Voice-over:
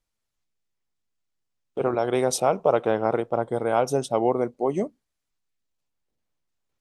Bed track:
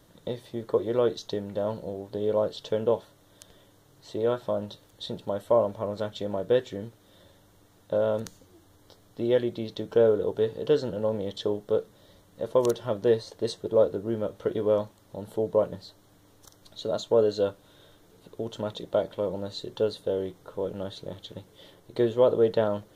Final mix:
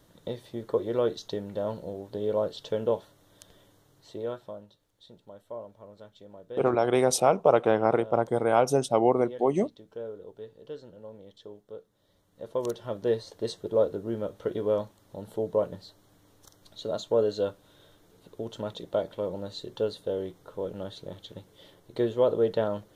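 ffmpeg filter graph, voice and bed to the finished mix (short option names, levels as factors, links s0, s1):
-filter_complex "[0:a]adelay=4800,volume=1[s0];[1:a]volume=4.47,afade=t=out:st=3.69:d=0.99:silence=0.16788,afade=t=in:st=11.87:d=1.48:silence=0.177828[s1];[s0][s1]amix=inputs=2:normalize=0"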